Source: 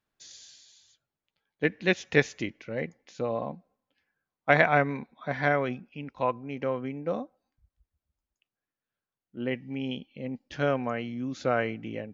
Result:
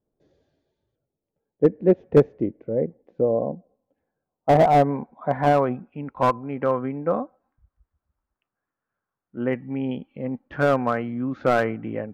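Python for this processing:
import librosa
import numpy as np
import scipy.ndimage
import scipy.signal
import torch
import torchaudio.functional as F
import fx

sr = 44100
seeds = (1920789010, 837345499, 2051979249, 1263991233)

y = fx.filter_sweep_lowpass(x, sr, from_hz=480.0, to_hz=1300.0, start_s=3.25, end_s=6.46, q=1.8)
y = fx.slew_limit(y, sr, full_power_hz=80.0)
y = F.gain(torch.from_numpy(y), 6.0).numpy()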